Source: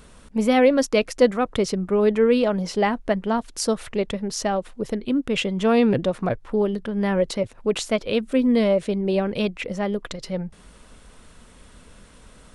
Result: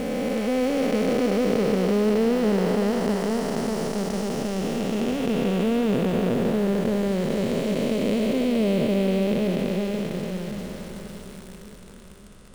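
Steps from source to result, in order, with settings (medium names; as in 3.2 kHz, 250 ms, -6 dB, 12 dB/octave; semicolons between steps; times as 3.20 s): spectral blur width 1430 ms; in parallel at -3 dB: bit crusher 7-bit; on the sum: two-band feedback delay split 540 Hz, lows 576 ms, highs 99 ms, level -12.5 dB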